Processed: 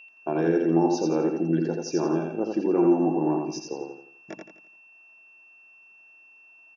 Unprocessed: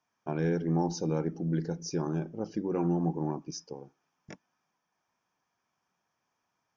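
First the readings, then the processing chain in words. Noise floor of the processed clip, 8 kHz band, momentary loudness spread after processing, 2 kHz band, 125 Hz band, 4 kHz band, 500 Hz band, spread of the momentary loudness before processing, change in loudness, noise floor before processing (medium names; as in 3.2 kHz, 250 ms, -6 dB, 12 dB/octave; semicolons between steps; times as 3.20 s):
-54 dBFS, no reading, 18 LU, +7.5 dB, -1.5 dB, +4.0 dB, +9.5 dB, 11 LU, +7.0 dB, -82 dBFS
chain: high-pass 260 Hz 12 dB/octave; treble shelf 4.7 kHz -9.5 dB; band-stop 2.1 kHz, Q 9.5; in parallel at +2.5 dB: peak limiter -27.5 dBFS, peak gain reduction 9.5 dB; on the sum: whistle 2.7 kHz -46 dBFS; small resonant body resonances 340/650 Hz, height 7 dB; on a send: feedback delay 85 ms, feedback 38%, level -4 dB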